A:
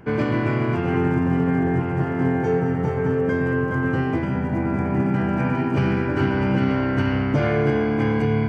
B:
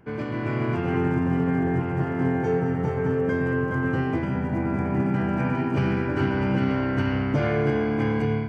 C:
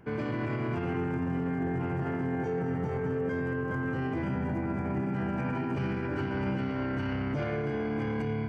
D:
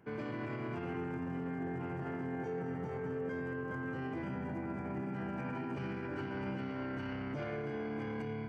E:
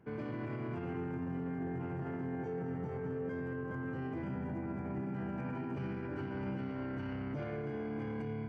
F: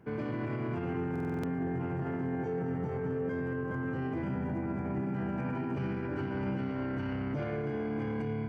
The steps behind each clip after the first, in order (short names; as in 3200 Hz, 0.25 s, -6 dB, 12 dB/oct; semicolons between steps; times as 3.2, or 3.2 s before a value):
AGC gain up to 7 dB; gain -9 dB
limiter -24 dBFS, peak gain reduction 11 dB
HPF 140 Hz 6 dB/oct; gain -6.5 dB
tilt -1.5 dB/oct; gain -2.5 dB
stuck buffer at 1.11, samples 2048, times 6; gain +5 dB